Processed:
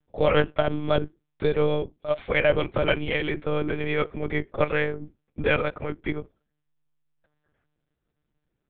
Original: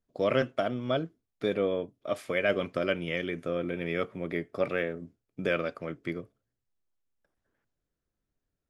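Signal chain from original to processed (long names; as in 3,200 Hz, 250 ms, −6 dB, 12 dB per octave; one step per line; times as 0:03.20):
one-pitch LPC vocoder at 8 kHz 150 Hz
level +6 dB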